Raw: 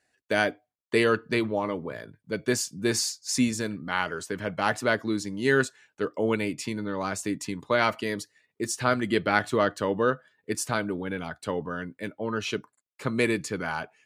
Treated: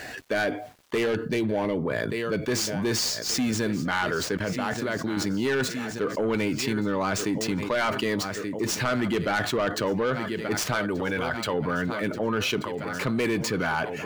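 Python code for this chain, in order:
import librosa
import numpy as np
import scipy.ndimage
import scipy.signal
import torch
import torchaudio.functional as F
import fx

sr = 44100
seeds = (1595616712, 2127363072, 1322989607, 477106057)

y = scipy.ndimage.median_filter(x, 5, mode='constant')
y = fx.level_steps(y, sr, step_db=19, at=(4.37, 5.17))
y = fx.peak_eq(y, sr, hz=220.0, db=-8.0, octaves=2.5, at=(10.74, 11.54))
y = fx.echo_feedback(y, sr, ms=1180, feedback_pct=47, wet_db=-19.5)
y = 10.0 ** (-21.0 / 20.0) * np.tanh(y / 10.0 ** (-21.0 / 20.0))
y = fx.peak_eq(y, sr, hz=1200.0, db=-11.5, octaves=0.6, at=(1.06, 1.77))
y = fx.env_flatten(y, sr, amount_pct=70)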